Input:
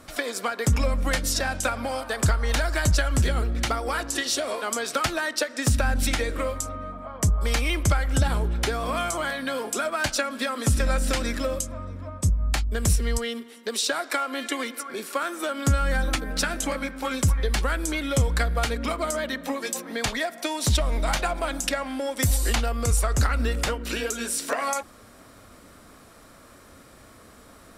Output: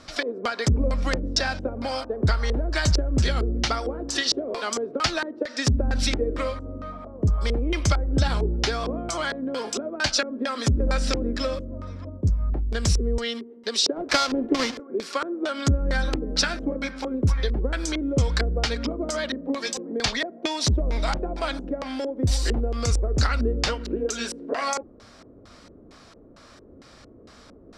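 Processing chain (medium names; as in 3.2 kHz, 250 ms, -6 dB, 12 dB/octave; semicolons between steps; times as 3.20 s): 13.96–14.80 s: square wave that keeps the level; LFO low-pass square 2.2 Hz 400–5100 Hz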